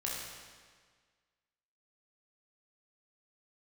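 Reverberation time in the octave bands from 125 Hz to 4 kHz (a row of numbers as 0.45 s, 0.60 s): 1.7 s, 1.7 s, 1.6 s, 1.6 s, 1.6 s, 1.5 s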